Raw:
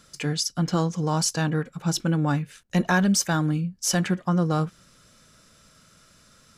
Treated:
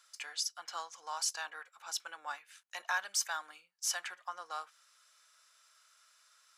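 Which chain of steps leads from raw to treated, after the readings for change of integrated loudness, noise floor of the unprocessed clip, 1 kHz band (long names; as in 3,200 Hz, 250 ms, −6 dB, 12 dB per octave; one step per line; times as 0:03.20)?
−13.5 dB, −57 dBFS, −10.5 dB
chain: high-pass filter 850 Hz 24 dB per octave
level −8.5 dB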